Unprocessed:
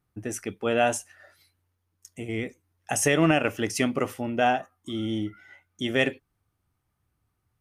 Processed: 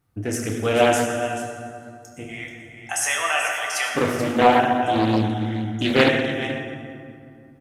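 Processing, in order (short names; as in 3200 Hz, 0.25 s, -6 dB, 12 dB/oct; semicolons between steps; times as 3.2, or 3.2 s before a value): 2.25–3.95 HPF 800 Hz 24 dB/oct; vocal rider within 3 dB 2 s; echo 0.433 s -11 dB; reverb RT60 2.5 s, pre-delay 5 ms, DRR -1.5 dB; Doppler distortion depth 0.42 ms; gain +3 dB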